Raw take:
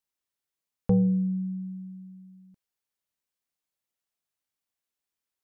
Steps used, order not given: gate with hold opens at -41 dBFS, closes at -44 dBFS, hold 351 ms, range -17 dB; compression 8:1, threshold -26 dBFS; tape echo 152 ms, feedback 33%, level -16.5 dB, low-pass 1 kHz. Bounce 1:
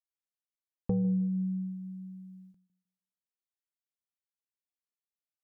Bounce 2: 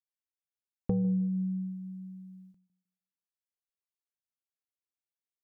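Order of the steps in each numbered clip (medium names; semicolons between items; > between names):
compression > gate with hold > tape echo; gate with hold > compression > tape echo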